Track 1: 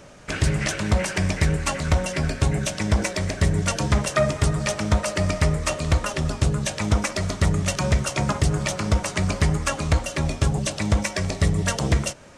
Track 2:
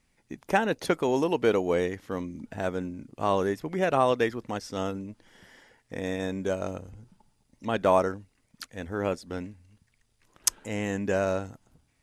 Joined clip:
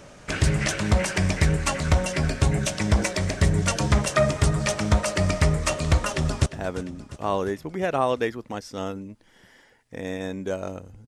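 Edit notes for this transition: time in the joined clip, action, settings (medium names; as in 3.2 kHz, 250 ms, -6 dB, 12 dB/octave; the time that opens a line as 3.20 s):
track 1
6.04–6.46 s: echo throw 350 ms, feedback 60%, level -14.5 dB
6.46 s: go over to track 2 from 2.45 s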